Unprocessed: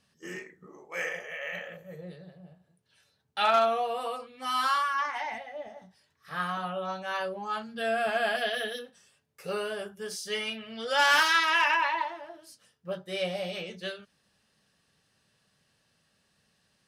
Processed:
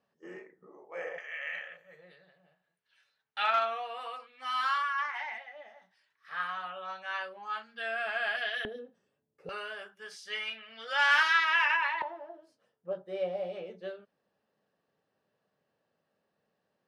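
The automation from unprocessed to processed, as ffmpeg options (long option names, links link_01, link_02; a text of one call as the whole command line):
ffmpeg -i in.wav -af "asetnsamples=nb_out_samples=441:pad=0,asendcmd='1.18 bandpass f 1900;8.65 bandpass f 330;9.49 bandpass f 1800;12.02 bandpass f 530',bandpass=frequency=610:width_type=q:width=1.1:csg=0" out.wav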